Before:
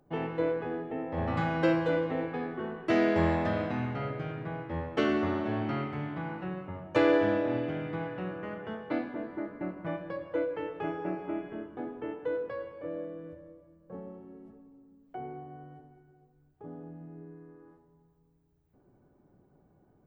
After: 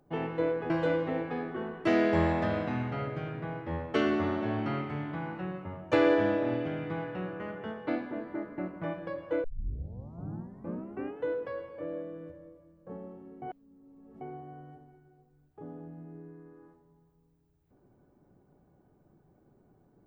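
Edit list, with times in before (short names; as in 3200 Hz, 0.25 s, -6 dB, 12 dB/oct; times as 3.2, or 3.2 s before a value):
0.7–1.73 cut
10.47 tape start 1.79 s
14.45–15.24 reverse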